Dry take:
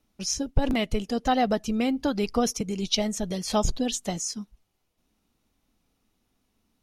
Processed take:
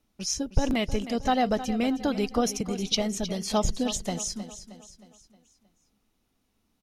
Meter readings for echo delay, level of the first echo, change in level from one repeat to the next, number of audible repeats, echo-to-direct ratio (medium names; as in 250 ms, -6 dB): 313 ms, -13.0 dB, -6.5 dB, 4, -12.0 dB